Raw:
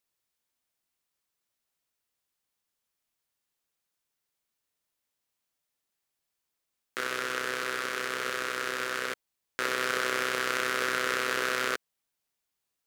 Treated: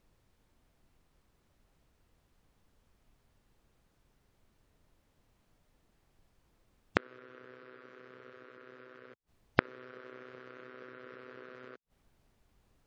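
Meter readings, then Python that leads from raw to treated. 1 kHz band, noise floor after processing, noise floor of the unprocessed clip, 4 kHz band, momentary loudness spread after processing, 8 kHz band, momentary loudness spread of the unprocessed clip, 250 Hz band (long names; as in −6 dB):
−12.0 dB, −74 dBFS, −84 dBFS, −19.0 dB, 20 LU, below −30 dB, 7 LU, −3.0 dB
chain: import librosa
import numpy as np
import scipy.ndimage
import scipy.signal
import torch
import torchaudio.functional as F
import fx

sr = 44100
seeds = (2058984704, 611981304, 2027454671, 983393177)

y = fx.spec_gate(x, sr, threshold_db=-20, keep='strong')
y = fx.tilt_eq(y, sr, slope=-4.5)
y = fx.gate_flip(y, sr, shuts_db=-31.0, range_db=-36)
y = y * librosa.db_to_amplitude(15.0)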